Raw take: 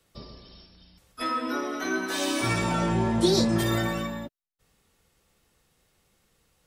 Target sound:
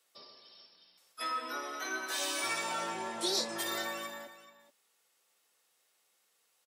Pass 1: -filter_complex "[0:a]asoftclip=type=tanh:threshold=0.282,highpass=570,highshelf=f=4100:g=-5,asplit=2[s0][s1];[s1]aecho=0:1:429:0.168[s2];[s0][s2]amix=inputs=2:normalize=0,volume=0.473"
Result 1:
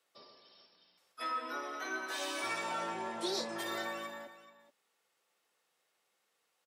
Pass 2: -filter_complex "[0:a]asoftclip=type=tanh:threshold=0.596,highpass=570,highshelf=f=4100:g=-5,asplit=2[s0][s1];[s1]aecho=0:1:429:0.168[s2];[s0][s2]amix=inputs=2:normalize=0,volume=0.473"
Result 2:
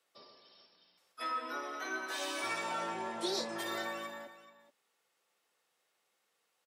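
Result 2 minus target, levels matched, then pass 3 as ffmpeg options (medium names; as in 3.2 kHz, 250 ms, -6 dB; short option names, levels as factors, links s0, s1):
8 kHz band -5.0 dB
-filter_complex "[0:a]asoftclip=type=tanh:threshold=0.596,highpass=570,highshelf=f=4100:g=5.5,asplit=2[s0][s1];[s1]aecho=0:1:429:0.168[s2];[s0][s2]amix=inputs=2:normalize=0,volume=0.473"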